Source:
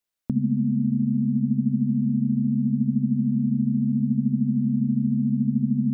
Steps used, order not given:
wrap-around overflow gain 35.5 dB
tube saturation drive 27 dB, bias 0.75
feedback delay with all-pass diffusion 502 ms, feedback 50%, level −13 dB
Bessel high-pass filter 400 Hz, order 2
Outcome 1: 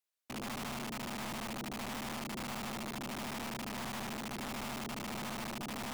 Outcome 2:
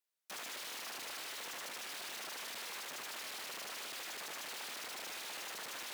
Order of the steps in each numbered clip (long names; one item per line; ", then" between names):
feedback delay with all-pass diffusion, then tube saturation, then Bessel high-pass filter, then wrap-around overflow
feedback delay with all-pass diffusion, then wrap-around overflow, then tube saturation, then Bessel high-pass filter